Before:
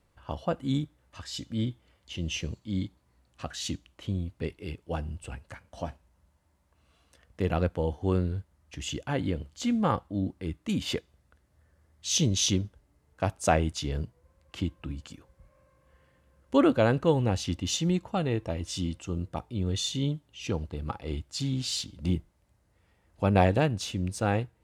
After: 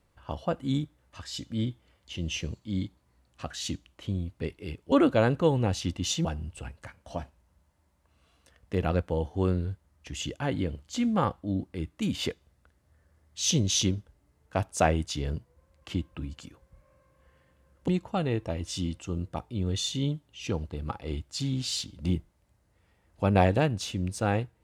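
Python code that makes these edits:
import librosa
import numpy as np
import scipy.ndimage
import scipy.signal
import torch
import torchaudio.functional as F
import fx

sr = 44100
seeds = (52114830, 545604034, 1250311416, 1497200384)

y = fx.edit(x, sr, fx.move(start_s=16.55, length_s=1.33, to_s=4.92), tone=tone)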